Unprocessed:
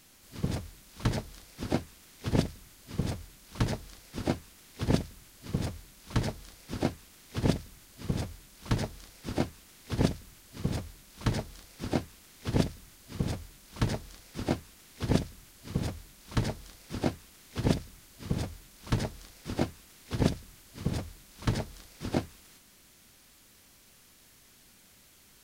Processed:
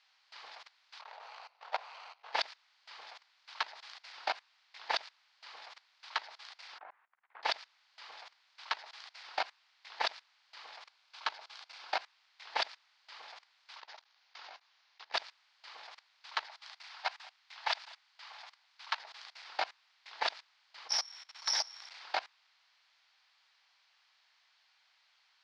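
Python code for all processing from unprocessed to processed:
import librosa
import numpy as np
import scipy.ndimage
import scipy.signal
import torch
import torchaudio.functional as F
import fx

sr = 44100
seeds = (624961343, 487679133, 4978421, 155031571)

y = fx.chain(x, sr, fx.median_filter(points=25),
    fx.brickwall_highpass(low_hz=410.0),
    fx.sustainer(db_per_s=65.0), at=(1.01, 2.33))
y = fx.chain(y, sr, fx.lowpass(hz=1800.0, slope=24),
    fx.low_shelf(hz=76.0, db=-11.5),
    fx.level_steps(step_db=21), at=(6.78, 7.43))
y = fx.chain(y, sr, fx.low_shelf(hz=440.0, db=3.0),
    fx.notch(hz=1900.0, q=11.0), at=(10.87, 11.91))
y = fx.chain(y, sr, fx.level_steps(step_db=23),
    fx.resample_bad(factor=3, down='none', up='filtered'), at=(13.78, 15.13))
y = fx.chain(y, sr, fx.highpass(hz=660.0, slope=24),
    fx.echo_single(ms=206, db=-22.5), at=(16.46, 18.99))
y = fx.chain(y, sr, fx.high_shelf(hz=3800.0, db=4.0),
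    fx.resample_bad(factor=8, down='filtered', up='zero_stuff'), at=(20.89, 21.9))
y = scipy.signal.sosfilt(scipy.signal.ellip(3, 1.0, 60, [810.0, 4700.0], 'bandpass', fs=sr, output='sos'), y)
y = fx.level_steps(y, sr, step_db=20)
y = y * 10.0 ** (9.0 / 20.0)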